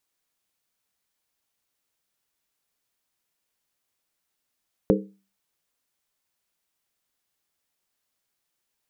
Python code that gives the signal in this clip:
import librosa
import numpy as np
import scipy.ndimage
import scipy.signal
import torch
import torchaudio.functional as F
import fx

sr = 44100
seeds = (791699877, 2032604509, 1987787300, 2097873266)

y = fx.strike_skin(sr, length_s=0.63, level_db=-17.0, hz=196.0, decay_s=0.36, tilt_db=0.5, modes=5)